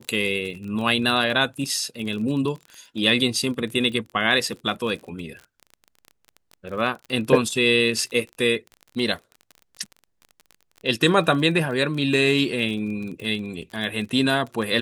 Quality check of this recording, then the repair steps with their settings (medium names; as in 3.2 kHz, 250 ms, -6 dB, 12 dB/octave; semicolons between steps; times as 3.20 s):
crackle 31 per s -31 dBFS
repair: de-click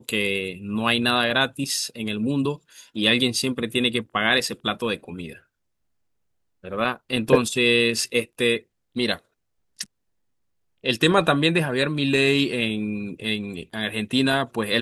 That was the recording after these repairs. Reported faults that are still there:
nothing left